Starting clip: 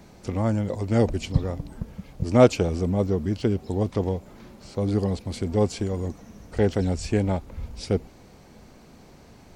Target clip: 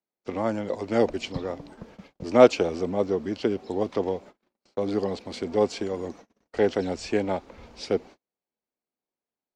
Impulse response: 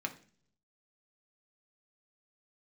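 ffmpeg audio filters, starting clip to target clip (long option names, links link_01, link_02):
-filter_complex "[0:a]agate=range=-43dB:threshold=-40dB:ratio=16:detection=peak,acrossover=split=250 6400:gain=0.112 1 0.112[link_01][link_02][link_03];[link_01][link_02][link_03]amix=inputs=3:normalize=0,volume=2dB"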